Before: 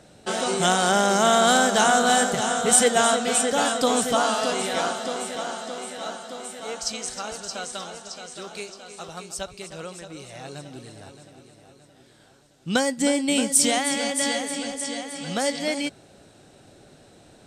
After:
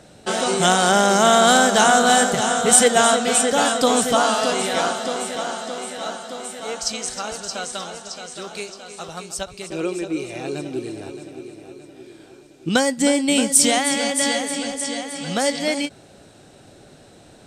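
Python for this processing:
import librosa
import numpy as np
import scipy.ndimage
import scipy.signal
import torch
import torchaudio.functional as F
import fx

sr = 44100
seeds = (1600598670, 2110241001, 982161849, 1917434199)

y = fx.small_body(x, sr, hz=(350.0, 2400.0), ring_ms=45, db=18, at=(9.7, 12.69))
y = fx.end_taper(y, sr, db_per_s=410.0)
y = y * librosa.db_to_amplitude(4.0)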